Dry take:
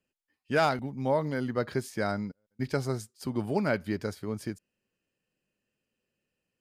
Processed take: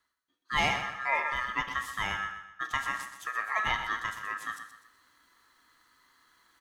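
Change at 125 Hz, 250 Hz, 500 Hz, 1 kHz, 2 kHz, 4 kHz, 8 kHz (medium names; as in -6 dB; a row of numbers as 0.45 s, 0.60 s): -13.0 dB, -16.0 dB, -14.0 dB, +3.0 dB, +7.0 dB, +7.0 dB, +1.5 dB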